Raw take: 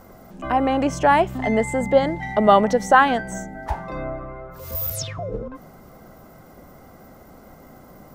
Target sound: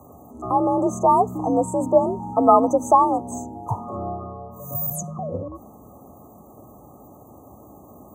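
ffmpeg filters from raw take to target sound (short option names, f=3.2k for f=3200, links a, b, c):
-af "afreqshift=54,afftfilt=real='re*(1-between(b*sr/4096,1300,6000))':imag='im*(1-between(b*sr/4096,1300,6000))':win_size=4096:overlap=0.75"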